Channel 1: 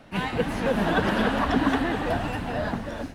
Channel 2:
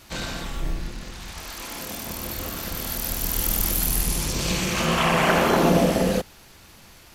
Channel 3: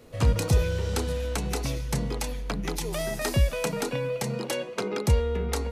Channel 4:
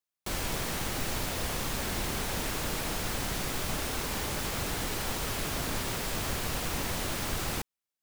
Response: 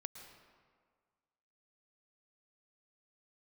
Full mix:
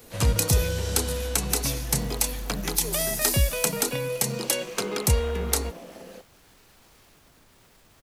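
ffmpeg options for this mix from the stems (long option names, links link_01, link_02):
-filter_complex "[0:a]acompressor=threshold=-28dB:ratio=6,volume=-13dB[link_01];[1:a]highpass=260,acompressor=threshold=-31dB:ratio=3,volume=-12dB[link_02];[2:a]aemphasis=mode=production:type=75kf,volume=-0.5dB[link_03];[3:a]alimiter=level_in=5.5dB:limit=-24dB:level=0:latency=1:release=51,volume=-5.5dB,adelay=1700,volume=-18.5dB[link_04];[link_01][link_02][link_03][link_04]amix=inputs=4:normalize=0"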